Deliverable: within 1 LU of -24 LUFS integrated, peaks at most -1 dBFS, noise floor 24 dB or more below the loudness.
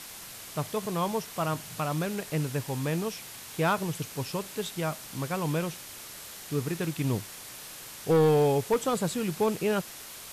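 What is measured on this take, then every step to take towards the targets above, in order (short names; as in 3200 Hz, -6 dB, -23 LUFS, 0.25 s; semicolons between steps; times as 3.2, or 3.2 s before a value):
clipped 0.7%; flat tops at -18.0 dBFS; noise floor -44 dBFS; noise floor target -54 dBFS; loudness -29.5 LUFS; peak -18.0 dBFS; loudness target -24.0 LUFS
-> clip repair -18 dBFS; noise print and reduce 10 dB; gain +5.5 dB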